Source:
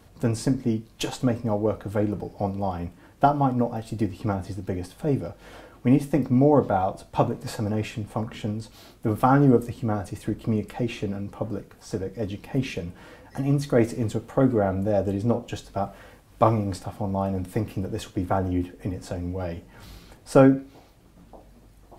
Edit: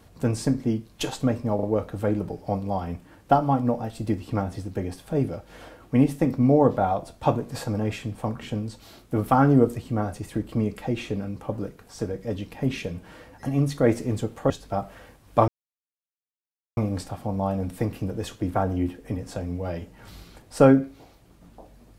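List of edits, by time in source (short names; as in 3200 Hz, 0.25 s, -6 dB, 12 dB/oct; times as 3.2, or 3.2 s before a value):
1.55 stutter 0.04 s, 3 plays
14.42–15.54 cut
16.52 insert silence 1.29 s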